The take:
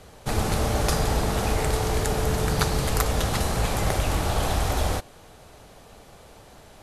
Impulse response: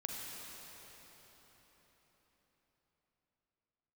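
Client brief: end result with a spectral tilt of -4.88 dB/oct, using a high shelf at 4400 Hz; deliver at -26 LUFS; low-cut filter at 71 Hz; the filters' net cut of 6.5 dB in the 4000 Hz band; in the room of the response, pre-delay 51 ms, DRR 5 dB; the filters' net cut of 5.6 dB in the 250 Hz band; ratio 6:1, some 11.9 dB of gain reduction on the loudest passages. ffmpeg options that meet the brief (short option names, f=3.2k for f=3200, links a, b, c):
-filter_complex "[0:a]highpass=71,equalizer=f=250:t=o:g=-8.5,equalizer=f=4k:t=o:g=-5.5,highshelf=f=4.4k:g=-5,acompressor=threshold=-36dB:ratio=6,asplit=2[a][b];[1:a]atrim=start_sample=2205,adelay=51[c];[b][c]afir=irnorm=-1:irlink=0,volume=-5.5dB[d];[a][d]amix=inputs=2:normalize=0,volume=12.5dB"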